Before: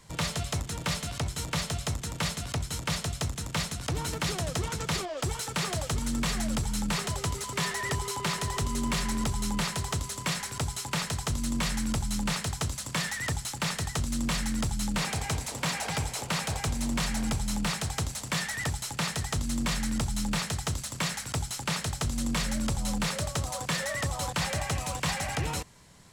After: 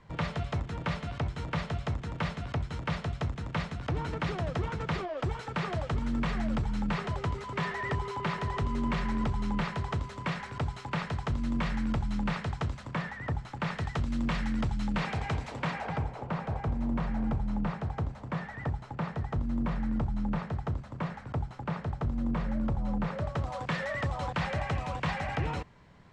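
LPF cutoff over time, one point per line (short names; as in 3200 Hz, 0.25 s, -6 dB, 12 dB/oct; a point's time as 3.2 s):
12.73 s 2100 Hz
13.24 s 1200 Hz
13.88 s 2400 Hz
15.55 s 2400 Hz
16.13 s 1100 Hz
23.01 s 1100 Hz
23.59 s 2300 Hz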